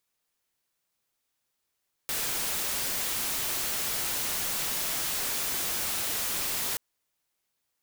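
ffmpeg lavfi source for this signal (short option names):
-f lavfi -i "anoisesrc=c=white:a=0.0517:d=4.68:r=44100:seed=1"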